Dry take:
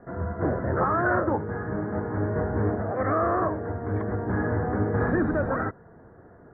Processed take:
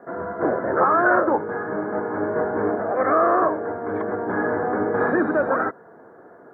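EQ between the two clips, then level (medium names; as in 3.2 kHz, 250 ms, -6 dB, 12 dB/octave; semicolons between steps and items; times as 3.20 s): high-pass 330 Hz 12 dB/octave; band-stop 1.9 kHz, Q 11; +7.0 dB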